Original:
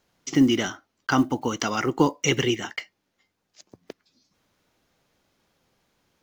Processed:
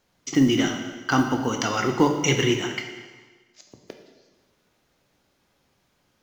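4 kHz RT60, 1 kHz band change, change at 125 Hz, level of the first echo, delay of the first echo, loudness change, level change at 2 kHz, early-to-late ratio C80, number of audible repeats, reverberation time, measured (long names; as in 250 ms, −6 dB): 1.3 s, +1.5 dB, +3.0 dB, no echo audible, no echo audible, +1.5 dB, +1.5 dB, 7.5 dB, no echo audible, 1.4 s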